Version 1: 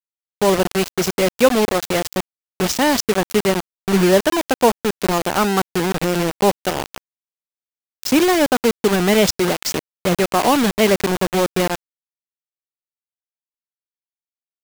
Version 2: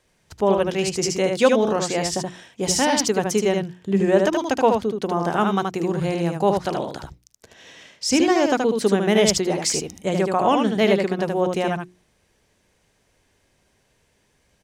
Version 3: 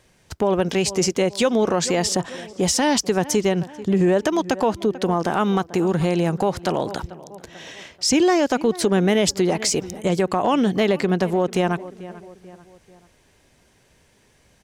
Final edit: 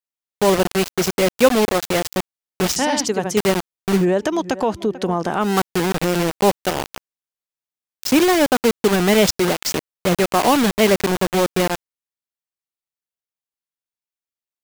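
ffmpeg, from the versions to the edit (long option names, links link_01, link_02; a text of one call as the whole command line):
ffmpeg -i take0.wav -i take1.wav -i take2.wav -filter_complex "[0:a]asplit=3[link_01][link_02][link_03];[link_01]atrim=end=2.762[link_04];[1:a]atrim=start=2.758:end=3.372[link_05];[link_02]atrim=start=3.368:end=4.06[link_06];[2:a]atrim=start=3.9:end=5.56[link_07];[link_03]atrim=start=5.4[link_08];[link_04][link_05]acrossfade=duration=0.004:curve1=hsin:curve2=hsin[link_09];[link_09][link_06]acrossfade=duration=0.004:curve1=hsin:curve2=hsin[link_10];[link_10][link_07]acrossfade=duration=0.16:curve1=tri:curve2=tri[link_11];[link_11][link_08]acrossfade=duration=0.16:curve1=tri:curve2=tri" out.wav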